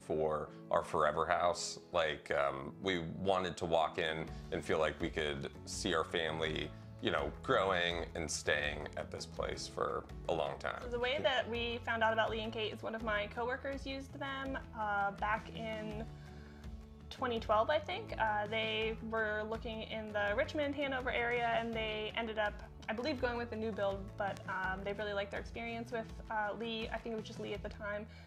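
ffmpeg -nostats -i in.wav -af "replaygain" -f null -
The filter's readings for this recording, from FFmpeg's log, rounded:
track_gain = +16.9 dB
track_peak = 0.135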